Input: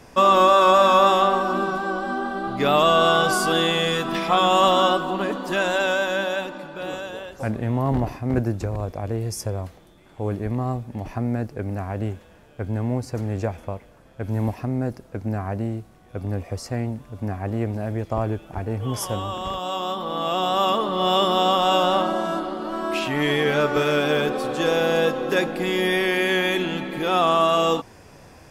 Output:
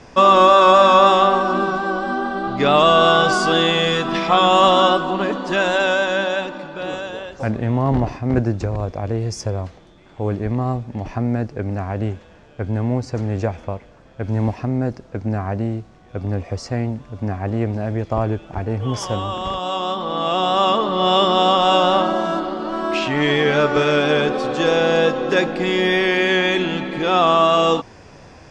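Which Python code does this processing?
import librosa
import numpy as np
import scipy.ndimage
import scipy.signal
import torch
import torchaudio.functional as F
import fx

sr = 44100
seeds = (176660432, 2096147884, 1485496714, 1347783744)

y = scipy.signal.sosfilt(scipy.signal.butter(4, 6800.0, 'lowpass', fs=sr, output='sos'), x)
y = y * librosa.db_to_amplitude(4.0)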